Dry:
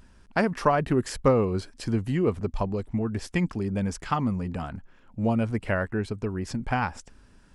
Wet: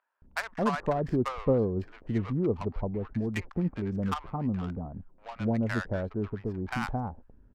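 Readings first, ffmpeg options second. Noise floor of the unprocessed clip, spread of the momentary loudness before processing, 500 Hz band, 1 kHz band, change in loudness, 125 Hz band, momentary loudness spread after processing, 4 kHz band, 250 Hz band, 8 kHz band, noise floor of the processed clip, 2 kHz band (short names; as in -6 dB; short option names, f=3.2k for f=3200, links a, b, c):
-56 dBFS, 9 LU, -4.0 dB, -5.5 dB, -4.0 dB, -3.0 dB, 9 LU, -5.0 dB, -3.0 dB, under -10 dB, -59 dBFS, -4.5 dB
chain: -filter_complex "[0:a]adynamicsmooth=sensitivity=3.5:basefreq=770,acrossover=split=840[a][b];[a]adelay=220[c];[c][b]amix=inputs=2:normalize=0,volume=-3dB"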